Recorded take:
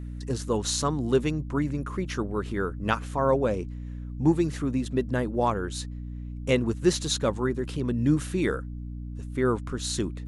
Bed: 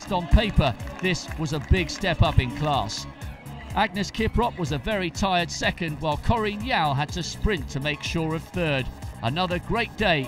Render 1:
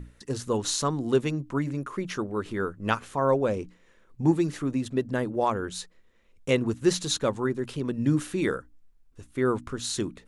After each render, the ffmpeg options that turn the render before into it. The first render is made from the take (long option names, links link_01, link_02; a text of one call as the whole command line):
ffmpeg -i in.wav -af "bandreject=frequency=60:width_type=h:width=6,bandreject=frequency=120:width_type=h:width=6,bandreject=frequency=180:width_type=h:width=6,bandreject=frequency=240:width_type=h:width=6,bandreject=frequency=300:width_type=h:width=6" out.wav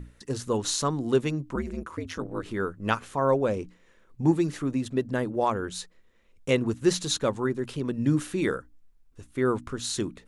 ffmpeg -i in.wav -filter_complex "[0:a]asettb=1/sr,asplit=3[link_01][link_02][link_03];[link_01]atrim=end=1.554[link_04];[link_02]atrim=start=1.55:end=2.43,asetpts=PTS-STARTPTS,afade=type=in:duration=0.004:curve=qsin,afade=type=out:start_time=0.876:duration=0.004:curve=qsin,aeval=exprs='val(0)*sin(2*PI*82*n/s)':channel_layout=same[link_05];[link_03]atrim=start=2.426[link_06];[link_04][link_05]acrossfade=duration=0.004:curve1=hsin:curve2=qsin[link_07];[link_07][link_06]acrossfade=duration=0.004:curve1=qsin:curve2=hsin" out.wav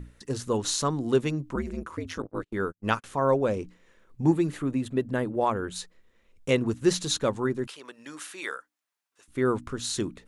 ffmpeg -i in.wav -filter_complex "[0:a]asettb=1/sr,asplit=3[link_01][link_02][link_03];[link_01]atrim=end=2.224[link_04];[link_02]atrim=start=2.22:end=3.04,asetpts=PTS-STARTPTS,afade=type=in:duration=0.004:curve=qsin,afade=type=out:start_time=0.816:duration=0.004:curve=qsin,agate=range=-43dB:threshold=-36dB:ratio=16:release=100:detection=peak[link_05];[link_03]atrim=start=3.036[link_06];[link_04][link_05]acrossfade=duration=0.004:curve1=hsin:curve2=qsin[link_07];[link_07][link_06]acrossfade=duration=0.004:curve1=qsin:curve2=hsin,asettb=1/sr,asplit=3[link_08][link_09][link_10];[link_08]atrim=end=4.334[link_11];[link_09]atrim=start=4.33:end=5.76,asetpts=PTS-STARTPTS,afade=type=in:duration=0.004:curve=qsin,afade=type=out:start_time=1.426:duration=0.004:curve=qsin,equalizer=frequency=5500:width_type=o:width=0.65:gain=-8[link_12];[link_10]atrim=start=5.756[link_13];[link_11][link_12]acrossfade=duration=0.004:curve1=hsin:curve2=qsin[link_14];[link_14][link_13]acrossfade=duration=0.004:curve1=qsin:curve2=hsin,asettb=1/sr,asplit=3[link_15][link_16][link_17];[link_15]atrim=end=7.674[link_18];[link_16]atrim=start=7.67:end=9.28,asetpts=PTS-STARTPTS,afade=type=in:duration=0.004:curve=qsin,afade=type=out:start_time=1.606:duration=0.004:curve=qsin,highpass=910[link_19];[link_17]atrim=start=9.276[link_20];[link_18][link_19]acrossfade=duration=0.004:curve1=hsin:curve2=qsin[link_21];[link_21][link_20]acrossfade=duration=0.004:curve1=qsin:curve2=hsin" out.wav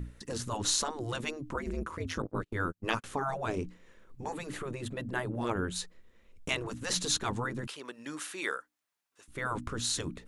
ffmpeg -i in.wav -af "lowshelf=frequency=340:gain=4,afftfilt=real='re*lt(hypot(re,im),0.224)':imag='im*lt(hypot(re,im),0.224)':win_size=1024:overlap=0.75" out.wav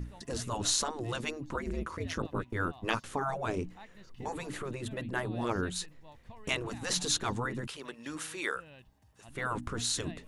ffmpeg -i in.wav -i bed.wav -filter_complex "[1:a]volume=-29.5dB[link_01];[0:a][link_01]amix=inputs=2:normalize=0" out.wav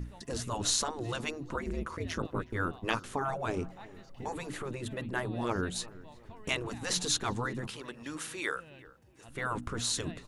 ffmpeg -i in.wav -filter_complex "[0:a]asplit=2[link_01][link_02];[link_02]adelay=364,lowpass=frequency=1100:poles=1,volume=-18dB,asplit=2[link_03][link_04];[link_04]adelay=364,lowpass=frequency=1100:poles=1,volume=0.49,asplit=2[link_05][link_06];[link_06]adelay=364,lowpass=frequency=1100:poles=1,volume=0.49,asplit=2[link_07][link_08];[link_08]adelay=364,lowpass=frequency=1100:poles=1,volume=0.49[link_09];[link_01][link_03][link_05][link_07][link_09]amix=inputs=5:normalize=0" out.wav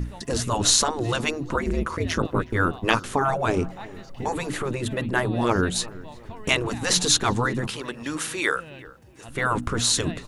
ffmpeg -i in.wav -af "volume=10.5dB" out.wav